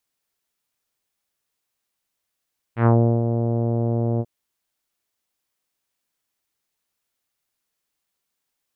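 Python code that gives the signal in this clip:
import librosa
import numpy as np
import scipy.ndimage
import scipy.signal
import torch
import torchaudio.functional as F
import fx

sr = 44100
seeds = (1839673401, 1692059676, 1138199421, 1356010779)

y = fx.sub_voice(sr, note=46, wave='saw', cutoff_hz=650.0, q=1.2, env_oct=2.0, env_s=0.21, attack_ms=102.0, decay_s=0.36, sustain_db=-7.5, release_s=0.05, note_s=1.44, slope=24)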